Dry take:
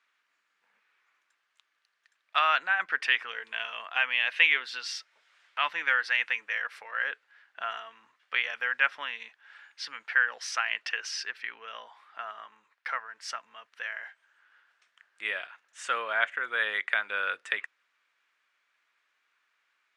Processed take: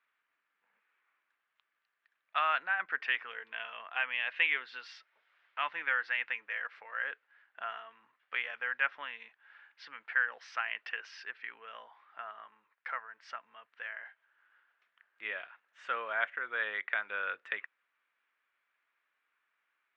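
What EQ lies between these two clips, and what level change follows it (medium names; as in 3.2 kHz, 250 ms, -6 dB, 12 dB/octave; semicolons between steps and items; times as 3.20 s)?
low-pass 2.8 kHz 12 dB/octave; distance through air 56 m; -4.5 dB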